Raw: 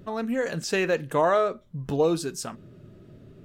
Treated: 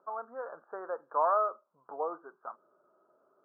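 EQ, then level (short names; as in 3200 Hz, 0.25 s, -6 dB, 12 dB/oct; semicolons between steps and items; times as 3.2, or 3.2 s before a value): HPF 770 Hz 12 dB/oct; band-pass 1100 Hz, Q 0.76; steep low-pass 1400 Hz 72 dB/oct; 0.0 dB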